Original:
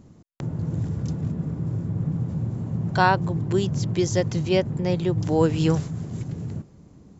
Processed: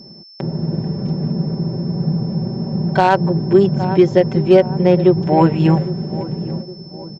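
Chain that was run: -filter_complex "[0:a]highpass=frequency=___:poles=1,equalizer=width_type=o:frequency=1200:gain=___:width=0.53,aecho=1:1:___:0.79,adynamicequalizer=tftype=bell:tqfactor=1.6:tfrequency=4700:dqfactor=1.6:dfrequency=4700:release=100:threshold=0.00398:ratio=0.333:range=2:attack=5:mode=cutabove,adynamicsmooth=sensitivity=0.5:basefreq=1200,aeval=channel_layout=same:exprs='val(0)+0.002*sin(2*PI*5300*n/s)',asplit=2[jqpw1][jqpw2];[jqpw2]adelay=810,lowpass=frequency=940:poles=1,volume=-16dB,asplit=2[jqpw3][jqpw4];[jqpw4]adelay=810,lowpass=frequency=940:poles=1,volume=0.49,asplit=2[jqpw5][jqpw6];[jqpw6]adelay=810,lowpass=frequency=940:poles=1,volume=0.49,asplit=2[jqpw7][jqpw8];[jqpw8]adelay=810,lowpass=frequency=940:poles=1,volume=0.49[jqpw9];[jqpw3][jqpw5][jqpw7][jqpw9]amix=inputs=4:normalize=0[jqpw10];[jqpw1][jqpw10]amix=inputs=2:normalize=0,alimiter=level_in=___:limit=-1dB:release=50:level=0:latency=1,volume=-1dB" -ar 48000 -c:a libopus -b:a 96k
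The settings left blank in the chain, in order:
440, -8, 5.2, 15dB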